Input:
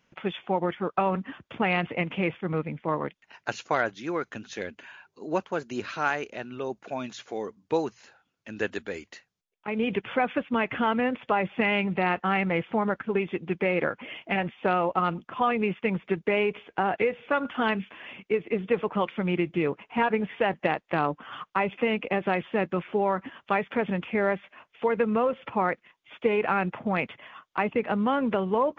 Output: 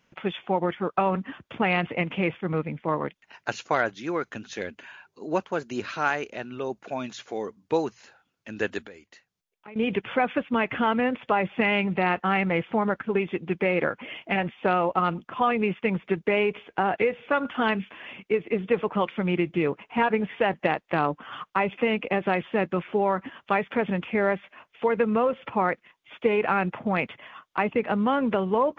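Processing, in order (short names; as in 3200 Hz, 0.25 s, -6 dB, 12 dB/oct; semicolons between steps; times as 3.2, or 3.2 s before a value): 8.87–9.76 compressor 2:1, threshold -55 dBFS, peak gain reduction 15 dB; gain +1.5 dB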